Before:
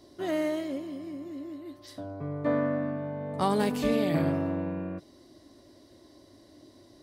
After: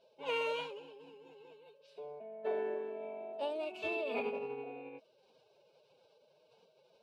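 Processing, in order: double band-pass 1300 Hz, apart 1.9 oct; formant-preserving pitch shift +7 st; gain +1 dB

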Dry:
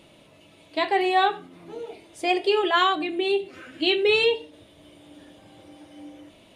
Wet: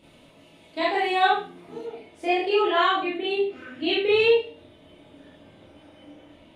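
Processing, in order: tone controls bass +4 dB, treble -2 dB, from 1.82 s treble -11 dB; Schroeder reverb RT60 0.33 s, combs from 25 ms, DRR -7 dB; gain -7 dB

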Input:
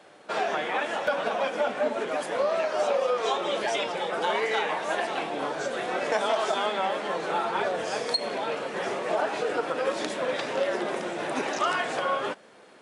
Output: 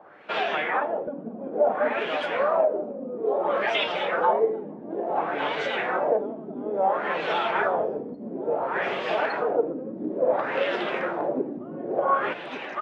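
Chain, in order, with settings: echo 1.16 s -7.5 dB; LFO low-pass sine 0.58 Hz 240–3200 Hz

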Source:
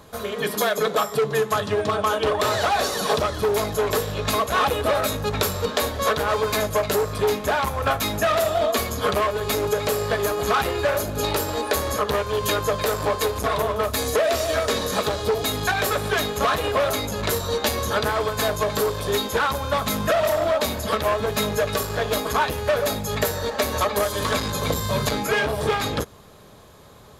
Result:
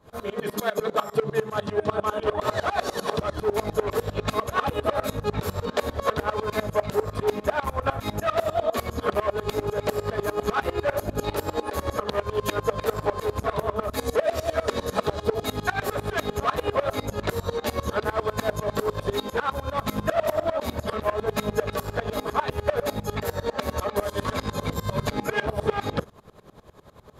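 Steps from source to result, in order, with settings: high shelf 2500 Hz -10 dB; in parallel at -1 dB: limiter -19 dBFS, peak gain reduction 9 dB; on the sum: dB-ramp tremolo swelling 10 Hz, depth 22 dB

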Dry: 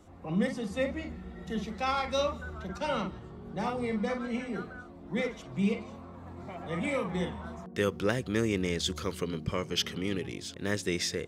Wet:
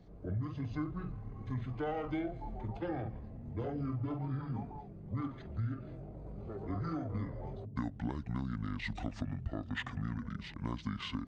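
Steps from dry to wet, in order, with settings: high shelf 2600 Hz -8.5 dB; compressor 6:1, threshold -33 dBFS, peak gain reduction 10 dB; pitch shift -9.5 st

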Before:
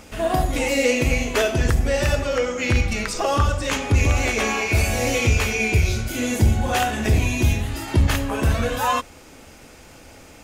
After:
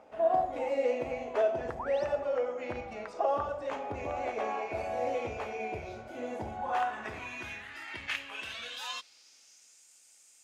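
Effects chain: painted sound rise, 1.79–2.05, 840–6400 Hz -27 dBFS; band-pass sweep 690 Hz -> 7800 Hz, 6.3–9.88; gain -3 dB

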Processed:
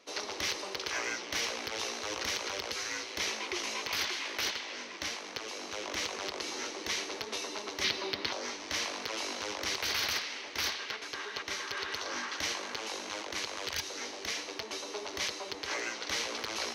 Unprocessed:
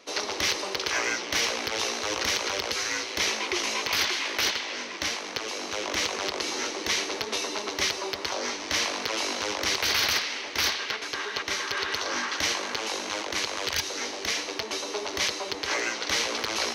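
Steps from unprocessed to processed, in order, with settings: 7.84–8.33 graphic EQ 125/250/2000/4000/8000 Hz +6/+8/+4/+8/-9 dB; gain -7.5 dB

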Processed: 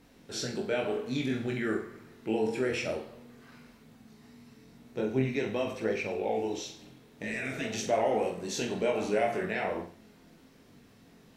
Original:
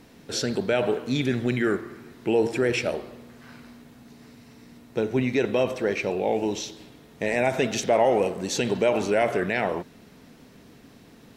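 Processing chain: chorus voices 2, 0.51 Hz, delay 21 ms, depth 2.9 ms; spectral repair 7.25–7.65, 340–1100 Hz; flutter echo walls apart 7.8 m, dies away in 0.38 s; gain -4.5 dB

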